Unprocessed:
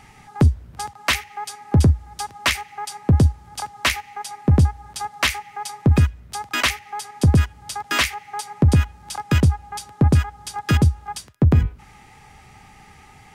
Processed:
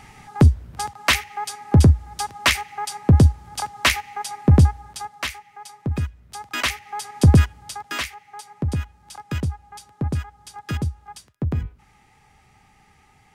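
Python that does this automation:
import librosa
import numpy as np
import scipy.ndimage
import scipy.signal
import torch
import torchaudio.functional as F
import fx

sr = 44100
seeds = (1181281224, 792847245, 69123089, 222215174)

y = fx.gain(x, sr, db=fx.line((4.69, 2.0), (5.34, -9.5), (5.96, -9.5), (7.32, 3.0), (8.08, -9.0)))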